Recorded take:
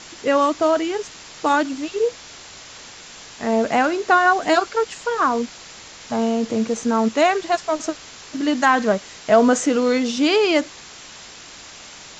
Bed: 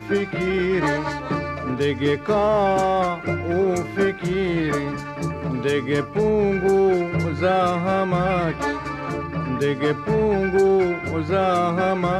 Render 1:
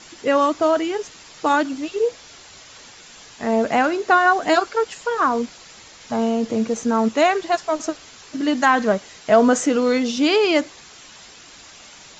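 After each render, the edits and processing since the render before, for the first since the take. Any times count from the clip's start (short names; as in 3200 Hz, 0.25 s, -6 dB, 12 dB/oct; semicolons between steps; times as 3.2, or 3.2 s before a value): denoiser 6 dB, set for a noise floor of -41 dBFS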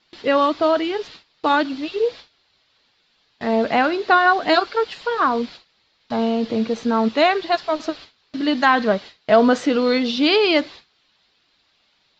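gate with hold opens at -30 dBFS; resonant high shelf 5400 Hz -9 dB, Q 3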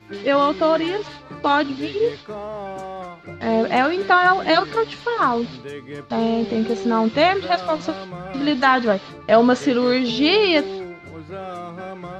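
add bed -12.5 dB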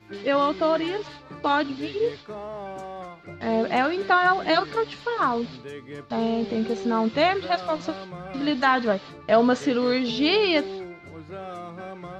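gain -4.5 dB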